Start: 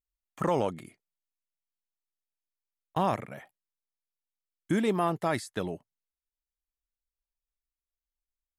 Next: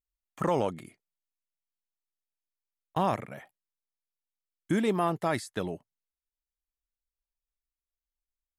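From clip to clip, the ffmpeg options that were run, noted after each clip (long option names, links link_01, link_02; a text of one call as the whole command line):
ffmpeg -i in.wav -af anull out.wav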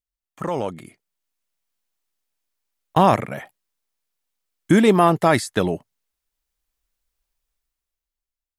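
ffmpeg -i in.wav -af "dynaudnorm=framelen=160:gausssize=13:maxgain=14.5dB" out.wav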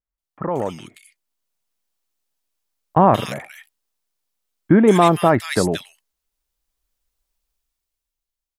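ffmpeg -i in.wav -filter_complex "[0:a]acrossover=split=1900[link_01][link_02];[link_02]adelay=180[link_03];[link_01][link_03]amix=inputs=2:normalize=0,volume=2dB" out.wav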